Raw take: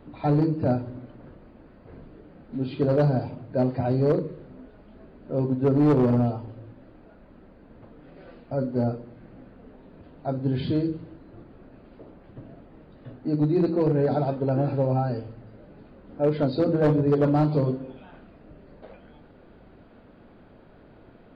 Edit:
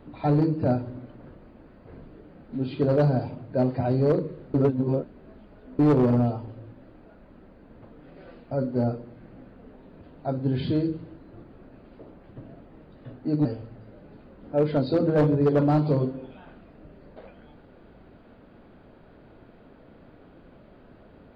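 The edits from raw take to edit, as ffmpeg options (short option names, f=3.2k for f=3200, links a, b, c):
-filter_complex "[0:a]asplit=4[a][b][c][d];[a]atrim=end=4.542[e];[b]atrim=start=4.538:end=5.792,asetpts=PTS-STARTPTS,areverse[f];[c]atrim=start=5.788:end=13.452[g];[d]atrim=start=15.108[h];[e][f]acrossfade=d=0.004:c1=hsin:c2=hsin[i];[i][g]acrossfade=d=0.004:c1=hsin:c2=hsin[j];[j][h]acrossfade=d=0.004:c1=hsin:c2=hsin"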